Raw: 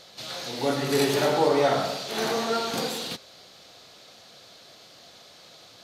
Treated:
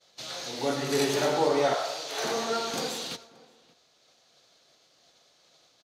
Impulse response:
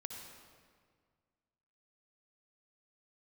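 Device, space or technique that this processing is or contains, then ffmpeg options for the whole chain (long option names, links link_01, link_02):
ducked reverb: -filter_complex "[0:a]asplit=3[link_01][link_02][link_03];[1:a]atrim=start_sample=2205[link_04];[link_02][link_04]afir=irnorm=-1:irlink=0[link_05];[link_03]apad=whole_len=257162[link_06];[link_05][link_06]sidechaincompress=threshold=-51dB:ratio=8:attack=39:release=867,volume=-2.5dB[link_07];[link_01][link_07]amix=inputs=2:normalize=0,asettb=1/sr,asplit=3[link_08][link_09][link_10];[link_08]atrim=end=1.744[link_11];[link_09]atrim=start=1.74:end=2.24,asetpts=PTS-STARTPTS,afade=type=in:duration=0.004:curve=qsin,afade=type=out:start_time=0.496:duration=0.004:curve=qsin,highpass=frequency=490:width=0.5412,highpass=frequency=490:width=1.3066[link_12];[link_10]atrim=start=2.236[link_13];[link_11][link_12]acrossfade=duration=0.004:curve1=hsin:curve2=qsin[link_14];[link_14][link_13]acrossfade=duration=0.004:curve1=qsin:curve2=hsin,agate=range=-33dB:threshold=-39dB:ratio=3:detection=peak,equalizer=frequency=100:width_type=o:width=0.33:gain=-11,equalizer=frequency=200:width_type=o:width=0.33:gain=-5,equalizer=frequency=6300:width_type=o:width=0.33:gain=5,equalizer=frequency=12500:width_type=o:width=0.33:gain=-4,asplit=2[link_15][link_16];[link_16]adelay=577.3,volume=-22dB,highshelf=frequency=4000:gain=-13[link_17];[link_15][link_17]amix=inputs=2:normalize=0,volume=-3dB"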